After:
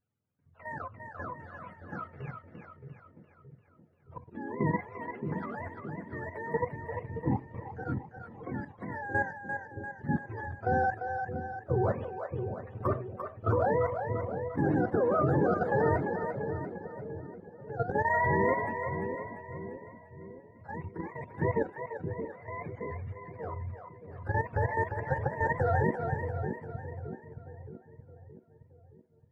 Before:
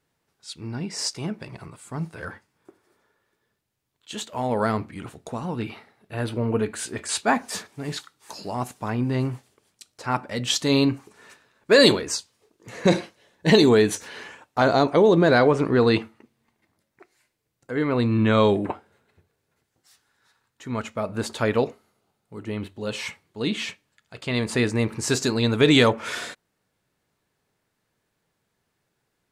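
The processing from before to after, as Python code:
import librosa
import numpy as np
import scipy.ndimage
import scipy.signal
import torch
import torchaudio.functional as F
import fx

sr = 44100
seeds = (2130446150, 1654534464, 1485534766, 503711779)

y = fx.octave_mirror(x, sr, pivot_hz=460.0)
y = fx.level_steps(y, sr, step_db=12)
y = fx.echo_split(y, sr, split_hz=490.0, low_ms=621, high_ms=345, feedback_pct=52, wet_db=-6.0)
y = y * librosa.db_to_amplitude(-2.5)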